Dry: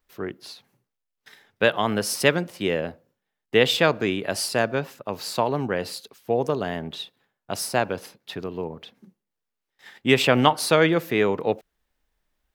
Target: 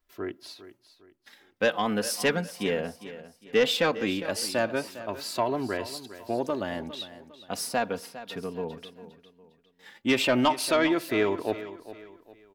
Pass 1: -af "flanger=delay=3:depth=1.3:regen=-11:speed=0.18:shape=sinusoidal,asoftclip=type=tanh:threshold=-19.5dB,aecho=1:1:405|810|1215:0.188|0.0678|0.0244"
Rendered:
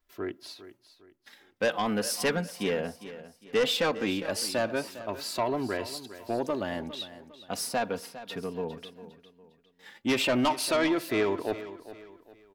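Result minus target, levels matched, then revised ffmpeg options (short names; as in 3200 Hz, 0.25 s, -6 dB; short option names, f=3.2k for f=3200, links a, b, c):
soft clip: distortion +7 dB
-af "flanger=delay=3:depth=1.3:regen=-11:speed=0.18:shape=sinusoidal,asoftclip=type=tanh:threshold=-13dB,aecho=1:1:405|810|1215:0.188|0.0678|0.0244"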